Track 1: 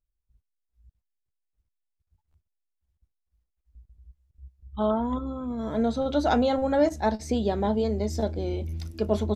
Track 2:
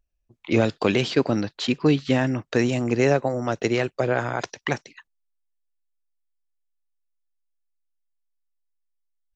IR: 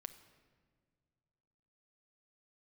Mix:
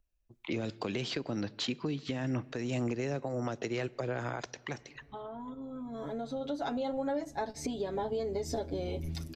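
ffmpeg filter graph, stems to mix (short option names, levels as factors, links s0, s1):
-filter_complex "[0:a]aecho=1:1:7.2:0.9,acompressor=threshold=0.0282:ratio=6,adelay=350,volume=0.794,asplit=2[s0][s1];[s1]volume=0.447[s2];[1:a]acrossover=split=370|3000[s3][s4][s5];[s4]acompressor=threshold=0.0631:ratio=6[s6];[s3][s6][s5]amix=inputs=3:normalize=0,acompressor=threshold=0.0708:ratio=6,volume=0.596,asplit=3[s7][s8][s9];[s8]volume=0.562[s10];[s9]apad=whole_len=428138[s11];[s0][s11]sidechaincompress=threshold=0.00398:ratio=8:attack=21:release=1470[s12];[2:a]atrim=start_sample=2205[s13];[s2][s10]amix=inputs=2:normalize=0[s14];[s14][s13]afir=irnorm=-1:irlink=0[s15];[s12][s7][s15]amix=inputs=3:normalize=0,alimiter=limit=0.0631:level=0:latency=1:release=335"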